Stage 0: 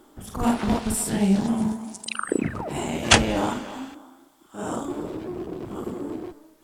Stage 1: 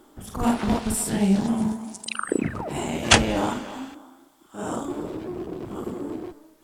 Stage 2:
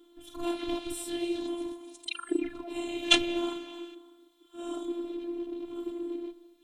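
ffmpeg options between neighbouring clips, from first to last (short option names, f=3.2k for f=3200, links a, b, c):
-af anull
-af "afftfilt=real='hypot(re,im)*cos(PI*b)':imag='0':win_size=512:overlap=0.75,superequalizer=6b=2.51:12b=2.51:13b=3.98,volume=-9.5dB"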